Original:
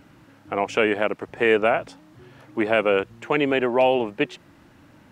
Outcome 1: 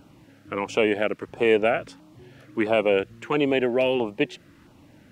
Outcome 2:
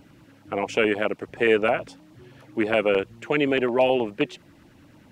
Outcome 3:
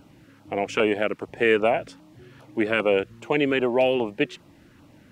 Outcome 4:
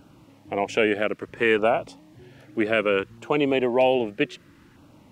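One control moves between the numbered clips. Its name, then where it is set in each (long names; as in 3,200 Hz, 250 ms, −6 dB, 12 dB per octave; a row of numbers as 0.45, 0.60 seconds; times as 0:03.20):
auto-filter notch, speed: 1.5, 9.5, 2.5, 0.63 Hertz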